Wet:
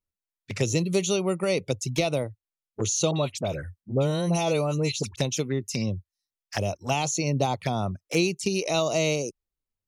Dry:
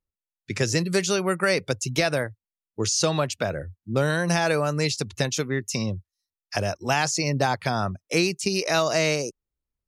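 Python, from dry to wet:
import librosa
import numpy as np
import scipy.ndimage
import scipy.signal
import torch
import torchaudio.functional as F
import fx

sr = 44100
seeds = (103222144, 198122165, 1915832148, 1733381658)

y = fx.dispersion(x, sr, late='highs', ms=53.0, hz=1400.0, at=(3.11, 5.16))
y = fx.env_flanger(y, sr, rest_ms=10.4, full_db=-22.5)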